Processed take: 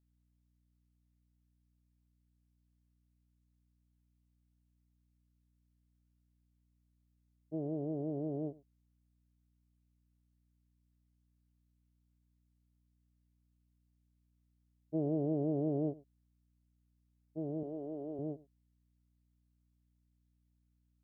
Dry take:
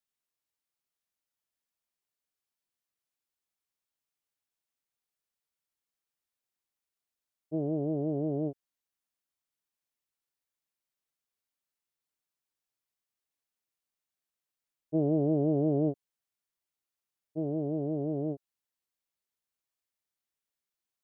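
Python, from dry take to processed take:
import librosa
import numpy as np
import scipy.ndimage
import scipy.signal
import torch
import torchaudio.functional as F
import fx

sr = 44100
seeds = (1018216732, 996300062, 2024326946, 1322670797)

p1 = fx.bessel_highpass(x, sr, hz=340.0, order=2, at=(17.63, 18.19))
p2 = fx.add_hum(p1, sr, base_hz=60, snr_db=31)
p3 = p2 + fx.echo_single(p2, sr, ms=101, db=-21.0, dry=0)
y = p3 * librosa.db_to_amplitude(-6.5)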